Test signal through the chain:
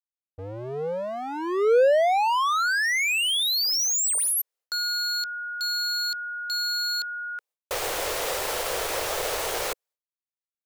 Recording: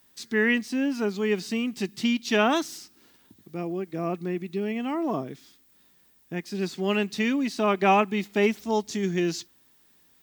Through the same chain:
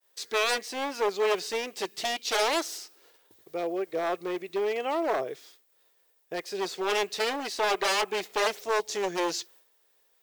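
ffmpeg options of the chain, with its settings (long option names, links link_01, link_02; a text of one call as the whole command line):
ffmpeg -i in.wav -af "agate=range=-33dB:threshold=-53dB:ratio=3:detection=peak,aeval=exprs='0.0708*(abs(mod(val(0)/0.0708+3,4)-2)-1)':channel_layout=same,lowshelf=frequency=330:width_type=q:width=3:gain=-13,volume=2dB" out.wav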